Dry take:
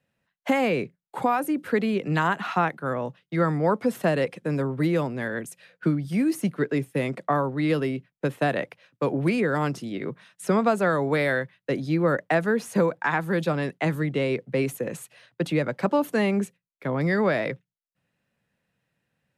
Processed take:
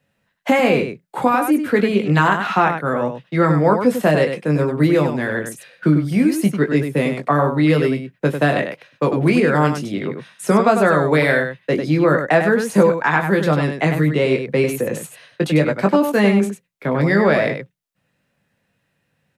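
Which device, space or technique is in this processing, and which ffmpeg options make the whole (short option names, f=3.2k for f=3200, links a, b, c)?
slapback doubling: -filter_complex "[0:a]asplit=3[a][b][c];[b]adelay=20,volume=-6dB[d];[c]adelay=98,volume=-7dB[e];[a][d][e]amix=inputs=3:normalize=0,volume=6.5dB"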